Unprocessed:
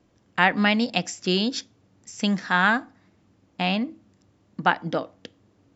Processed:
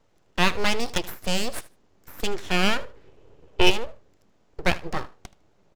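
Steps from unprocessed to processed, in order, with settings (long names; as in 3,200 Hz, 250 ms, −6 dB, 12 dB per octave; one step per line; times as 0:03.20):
0:02.78–0:03.69: hollow resonant body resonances 210/2,800 Hz, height 13 dB → 17 dB, ringing for 25 ms
full-wave rectification
repeating echo 77 ms, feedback 16%, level −19 dB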